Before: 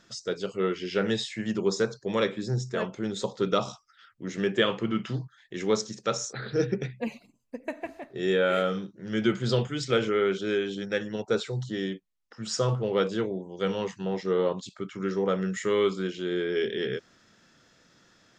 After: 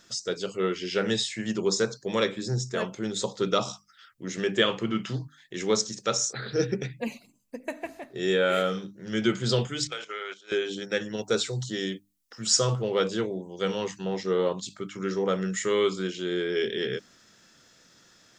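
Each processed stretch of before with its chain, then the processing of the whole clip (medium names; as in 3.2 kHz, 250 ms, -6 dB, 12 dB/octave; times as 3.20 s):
9.87–10.52 s: gate -28 dBFS, range -16 dB + high-pass 800 Hz + compression, threshold -31 dBFS
11.18–12.82 s: treble shelf 4.2 kHz +6 dB + band-stop 860 Hz, Q 24
whole clip: treble shelf 5 kHz +11.5 dB; hum notches 50/100/150/200/250/300 Hz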